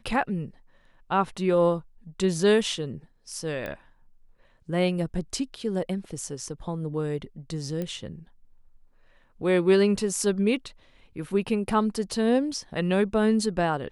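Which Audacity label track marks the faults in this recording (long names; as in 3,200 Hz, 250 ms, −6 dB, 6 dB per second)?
3.660000	3.660000	click −21 dBFS
7.820000	7.820000	click −19 dBFS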